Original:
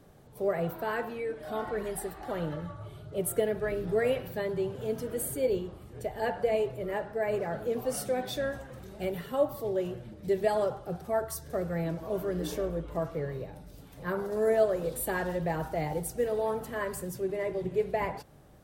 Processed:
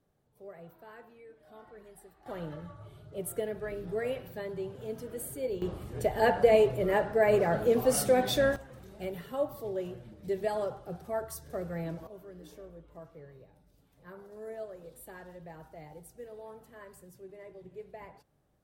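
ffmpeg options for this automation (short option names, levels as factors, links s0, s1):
-af "asetnsamples=n=441:p=0,asendcmd='2.26 volume volume -6dB;5.62 volume volume 6dB;8.56 volume volume -4.5dB;12.07 volume volume -16.5dB',volume=0.119"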